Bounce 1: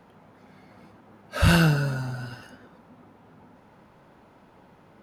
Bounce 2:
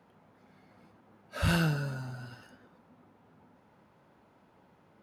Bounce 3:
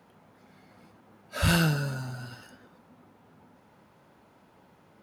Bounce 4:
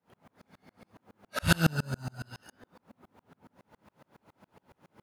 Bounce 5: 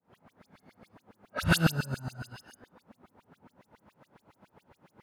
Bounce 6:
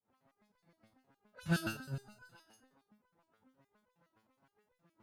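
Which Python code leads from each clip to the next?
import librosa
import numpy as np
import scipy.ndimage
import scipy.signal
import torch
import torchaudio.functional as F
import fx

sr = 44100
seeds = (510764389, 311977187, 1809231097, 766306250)

y1 = scipy.signal.sosfilt(scipy.signal.butter(2, 54.0, 'highpass', fs=sr, output='sos'), x)
y1 = F.gain(torch.from_numpy(y1), -8.5).numpy()
y2 = fx.high_shelf(y1, sr, hz=4100.0, db=6.5)
y2 = F.gain(torch.from_numpy(y2), 3.5).numpy()
y3 = fx.tremolo_decay(y2, sr, direction='swelling', hz=7.2, depth_db=35)
y3 = F.gain(torch.from_numpy(y3), 6.5).numpy()
y4 = fx.dispersion(y3, sr, late='highs', ms=55.0, hz=2800.0)
y5 = fx.resonator_held(y4, sr, hz=9.6, low_hz=110.0, high_hz=500.0)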